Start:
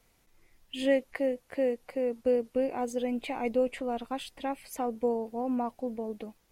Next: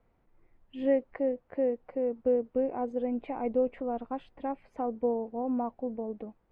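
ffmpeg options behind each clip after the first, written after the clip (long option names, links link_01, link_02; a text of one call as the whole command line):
ffmpeg -i in.wav -af "lowpass=1200" out.wav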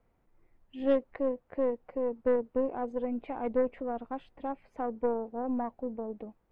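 ffmpeg -i in.wav -af "aeval=exprs='0.15*(cos(1*acos(clip(val(0)/0.15,-1,1)))-cos(1*PI/2))+0.00841*(cos(3*acos(clip(val(0)/0.15,-1,1)))-cos(3*PI/2))+0.0133*(cos(4*acos(clip(val(0)/0.15,-1,1)))-cos(4*PI/2))':channel_layout=same" out.wav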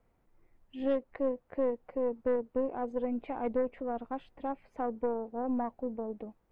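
ffmpeg -i in.wav -af "alimiter=limit=-20.5dB:level=0:latency=1:release=382" out.wav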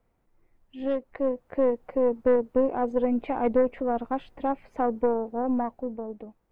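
ffmpeg -i in.wav -af "dynaudnorm=framelen=240:gausssize=11:maxgain=8.5dB" out.wav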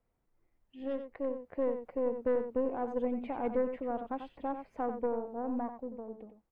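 ffmpeg -i in.wav -af "aecho=1:1:91:0.376,volume=-9dB" out.wav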